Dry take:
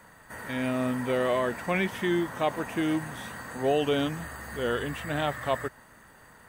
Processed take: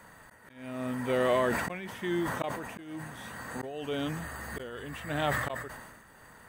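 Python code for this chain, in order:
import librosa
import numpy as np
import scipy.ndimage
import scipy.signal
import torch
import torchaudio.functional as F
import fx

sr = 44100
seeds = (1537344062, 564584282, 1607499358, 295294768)

y = fx.auto_swell(x, sr, attack_ms=767.0)
y = fx.sustainer(y, sr, db_per_s=41.0)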